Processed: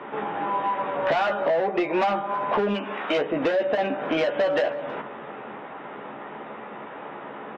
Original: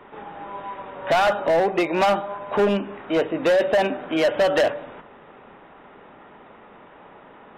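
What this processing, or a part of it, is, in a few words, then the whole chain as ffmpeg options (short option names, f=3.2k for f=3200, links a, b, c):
AM radio: -filter_complex "[0:a]asplit=3[a][b][c];[a]afade=t=out:st=2.73:d=0.02[d];[b]aemphasis=mode=production:type=riaa,afade=t=in:st=2.73:d=0.02,afade=t=out:st=3.17:d=0.02[e];[c]afade=t=in:st=3.17:d=0.02[f];[d][e][f]amix=inputs=3:normalize=0,highpass=150,lowpass=3.4k,asplit=2[g][h];[h]adelay=14,volume=-5dB[i];[g][i]amix=inputs=2:normalize=0,acompressor=threshold=-28dB:ratio=6,asoftclip=type=tanh:threshold=-21.5dB,aecho=1:1:321:0.0708,volume=8dB"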